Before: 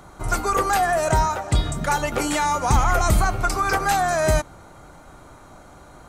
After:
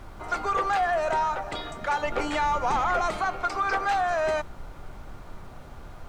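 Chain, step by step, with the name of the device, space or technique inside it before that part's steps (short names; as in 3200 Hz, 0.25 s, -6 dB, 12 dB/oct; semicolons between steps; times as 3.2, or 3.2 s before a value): aircraft cabin announcement (BPF 430–3500 Hz; soft clip -14 dBFS, distortion -22 dB; brown noise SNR 12 dB); 2.03–3.06 low shelf 360 Hz +5.5 dB; gain -2.5 dB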